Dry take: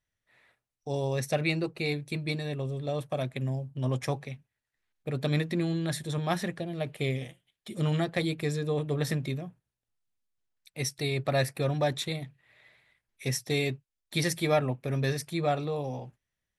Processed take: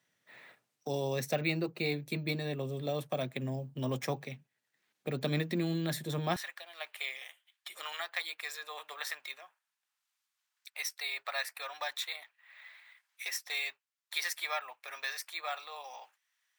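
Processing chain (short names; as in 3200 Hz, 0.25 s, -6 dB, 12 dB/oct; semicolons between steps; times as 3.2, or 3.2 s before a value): HPF 150 Hz 24 dB/oct, from 6.36 s 940 Hz; careless resampling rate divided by 2×, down filtered, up hold; three-band squash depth 40%; gain -1.5 dB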